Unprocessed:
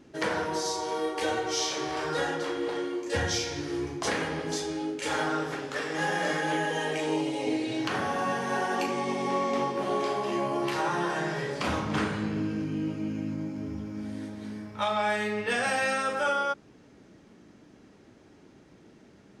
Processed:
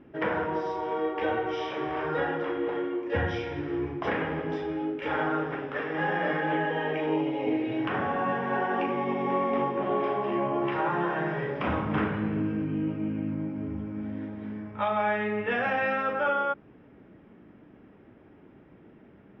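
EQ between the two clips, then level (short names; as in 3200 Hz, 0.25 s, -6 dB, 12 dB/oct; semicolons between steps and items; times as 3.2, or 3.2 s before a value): polynomial smoothing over 25 samples; air absorption 240 m; +2.0 dB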